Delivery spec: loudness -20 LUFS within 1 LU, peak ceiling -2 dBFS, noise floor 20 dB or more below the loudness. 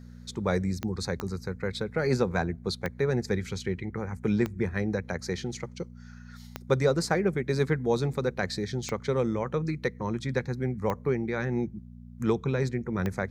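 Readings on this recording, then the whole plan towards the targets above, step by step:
clicks found 8; hum 60 Hz; highest harmonic 240 Hz; hum level -43 dBFS; loudness -29.5 LUFS; peak level -10.0 dBFS; loudness target -20.0 LUFS
-> de-click; de-hum 60 Hz, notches 4; trim +9.5 dB; peak limiter -2 dBFS

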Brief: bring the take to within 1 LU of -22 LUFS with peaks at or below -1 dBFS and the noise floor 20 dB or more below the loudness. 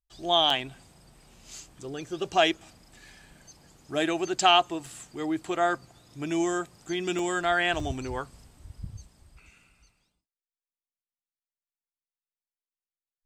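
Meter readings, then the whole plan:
dropouts 4; longest dropout 2.6 ms; loudness -27.0 LUFS; peak level -7.5 dBFS; loudness target -22.0 LUFS
-> interpolate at 0.50/4.86/7.19/7.80 s, 2.6 ms; trim +5 dB

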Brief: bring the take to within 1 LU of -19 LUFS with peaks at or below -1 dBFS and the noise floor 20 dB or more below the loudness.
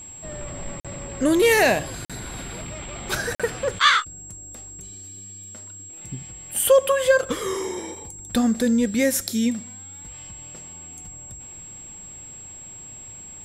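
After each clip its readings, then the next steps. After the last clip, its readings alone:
dropouts 3; longest dropout 46 ms; steady tone 7.6 kHz; tone level -38 dBFS; loudness -22.0 LUFS; peak level -5.0 dBFS; loudness target -19.0 LUFS
-> interpolate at 0.80/2.05/3.35 s, 46 ms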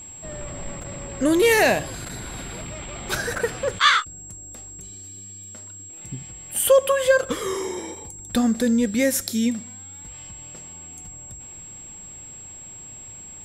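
dropouts 0; steady tone 7.6 kHz; tone level -38 dBFS
-> band-stop 7.6 kHz, Q 30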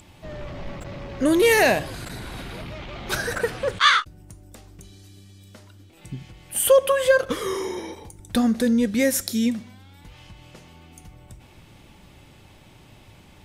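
steady tone not found; loudness -21.0 LUFS; peak level -5.0 dBFS; loudness target -19.0 LUFS
-> trim +2 dB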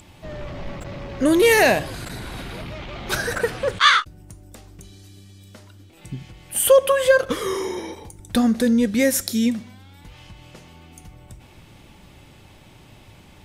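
loudness -19.0 LUFS; peak level -3.0 dBFS; noise floor -49 dBFS

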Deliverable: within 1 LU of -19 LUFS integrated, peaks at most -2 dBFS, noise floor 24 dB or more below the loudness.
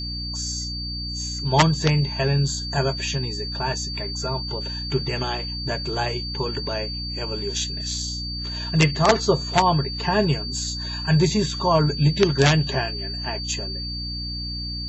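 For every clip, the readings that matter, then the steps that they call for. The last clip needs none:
hum 60 Hz; highest harmonic 300 Hz; hum level -30 dBFS; steady tone 4.6 kHz; tone level -30 dBFS; loudness -23.0 LUFS; peak level -4.0 dBFS; loudness target -19.0 LUFS
-> de-hum 60 Hz, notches 5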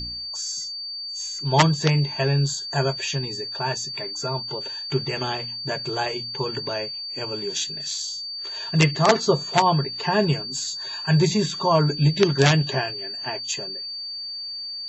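hum not found; steady tone 4.6 kHz; tone level -30 dBFS
-> band-stop 4.6 kHz, Q 30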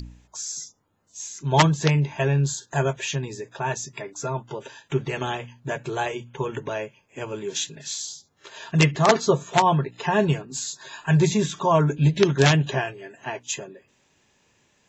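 steady tone not found; loudness -24.0 LUFS; peak level -4.0 dBFS; loudness target -19.0 LUFS
-> trim +5 dB; peak limiter -2 dBFS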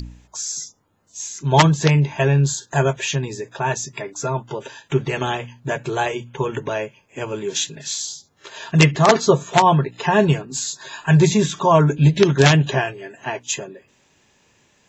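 loudness -19.5 LUFS; peak level -2.0 dBFS; noise floor -60 dBFS

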